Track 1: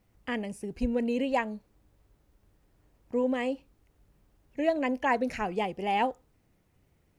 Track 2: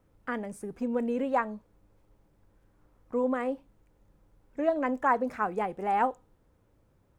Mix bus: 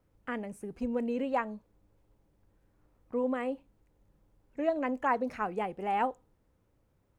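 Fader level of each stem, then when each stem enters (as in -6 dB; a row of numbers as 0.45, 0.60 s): -13.5, -5.5 dB; 0.00, 0.00 s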